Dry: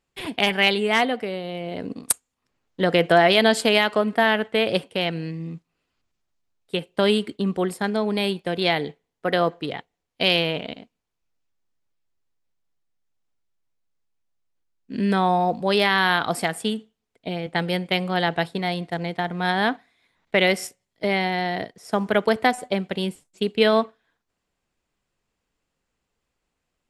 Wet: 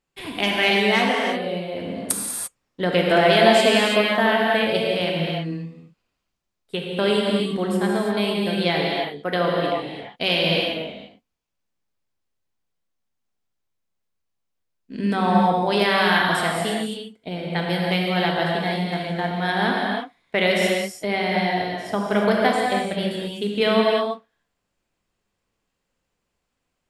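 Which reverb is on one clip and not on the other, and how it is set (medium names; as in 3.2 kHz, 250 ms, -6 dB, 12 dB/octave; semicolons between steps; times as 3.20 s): gated-style reverb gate 370 ms flat, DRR -2.5 dB; trim -3 dB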